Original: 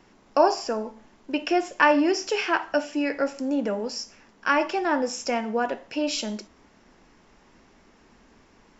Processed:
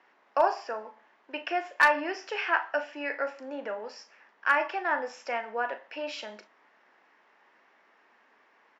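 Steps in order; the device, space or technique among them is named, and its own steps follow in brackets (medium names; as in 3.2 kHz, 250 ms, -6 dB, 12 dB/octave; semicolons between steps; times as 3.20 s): megaphone (band-pass 670–2600 Hz; peaking EQ 1.8 kHz +4.5 dB 0.34 oct; hard clipper -11 dBFS, distortion -22 dB; doubling 38 ms -12.5 dB); trim -2 dB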